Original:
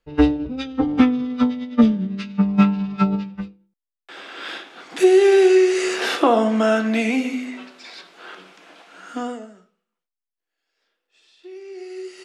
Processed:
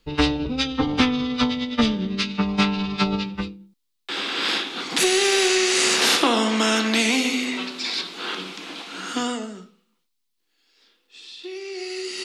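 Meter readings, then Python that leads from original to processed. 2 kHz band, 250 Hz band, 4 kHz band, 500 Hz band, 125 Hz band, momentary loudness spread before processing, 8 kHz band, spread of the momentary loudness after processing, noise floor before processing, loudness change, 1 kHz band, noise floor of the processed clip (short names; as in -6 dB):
+4.0 dB, -4.5 dB, +11.0 dB, -7.0 dB, n/a, 21 LU, +12.0 dB, 15 LU, under -85 dBFS, -3.0 dB, -0.5 dB, -74 dBFS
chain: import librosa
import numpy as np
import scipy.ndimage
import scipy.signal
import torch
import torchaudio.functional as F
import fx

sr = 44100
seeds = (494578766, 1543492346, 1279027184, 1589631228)

y = fx.graphic_eq_15(x, sr, hz=(250, 630, 1600, 4000), db=(5, -10, -6, 6))
y = fx.spectral_comp(y, sr, ratio=2.0)
y = y * 10.0 ** (-5.5 / 20.0)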